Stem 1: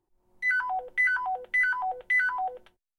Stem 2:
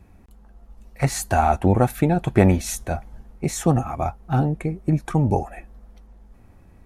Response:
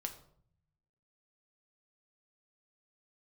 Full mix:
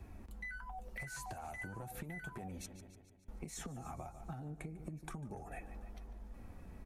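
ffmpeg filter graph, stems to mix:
-filter_complex "[0:a]volume=-4dB[link_01];[1:a]alimiter=limit=-7.5dB:level=0:latency=1:release=497,asoftclip=type=tanh:threshold=-10dB,acompressor=threshold=-28dB:ratio=5,volume=2.5dB,asplit=3[link_02][link_03][link_04];[link_02]atrim=end=2.66,asetpts=PTS-STARTPTS,afade=type=out:start_time=2.656:duration=0.004:curve=hsin[link_05];[link_03]atrim=start=2.66:end=3.28,asetpts=PTS-STARTPTS,volume=0[link_06];[link_04]atrim=start=3.28,asetpts=PTS-STARTPTS,afade=type=in:duration=0.004:curve=hsin[link_07];[link_05][link_06][link_07]concat=n=3:v=0:a=1,asplit=2[link_08][link_09];[link_09]volume=-18dB,aecho=0:1:146|292|438|584|730|876|1022|1168:1|0.56|0.314|0.176|0.0983|0.0551|0.0308|0.0173[link_10];[link_01][link_08][link_10]amix=inputs=3:normalize=0,acrossover=split=170|6400[link_11][link_12][link_13];[link_11]acompressor=threshold=-41dB:ratio=4[link_14];[link_12]acompressor=threshold=-39dB:ratio=4[link_15];[link_13]acompressor=threshold=-46dB:ratio=4[link_16];[link_14][link_15][link_16]amix=inputs=3:normalize=0,flanger=delay=2.7:depth=4.2:regen=-56:speed=0.33:shape=triangular,acompressor=threshold=-42dB:ratio=6"

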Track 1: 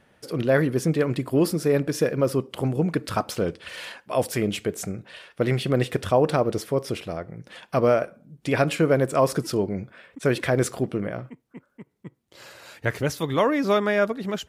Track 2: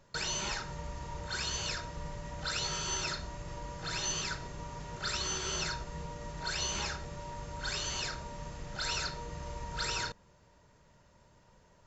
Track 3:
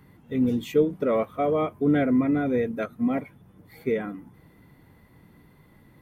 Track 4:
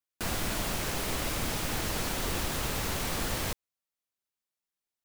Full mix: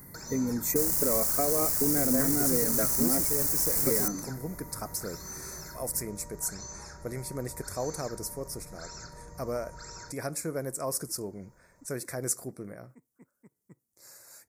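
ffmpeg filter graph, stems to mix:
ffmpeg -i stem1.wav -i stem2.wav -i stem3.wav -i stem4.wav -filter_complex "[0:a]adelay=1650,volume=-14dB[link_01];[1:a]lowpass=frequency=1500:poles=1,acompressor=threshold=-42dB:ratio=6,volume=-1dB[link_02];[2:a]acompressor=threshold=-29dB:ratio=6,volume=2dB[link_03];[3:a]acrusher=bits=4:mix=0:aa=0.5,adelay=550,volume=-10.5dB[link_04];[link_01][link_02][link_03][link_04]amix=inputs=4:normalize=0,aexciter=amount=8:drive=4.1:freq=5400,asuperstop=centerf=3000:order=4:qfactor=1.6" out.wav

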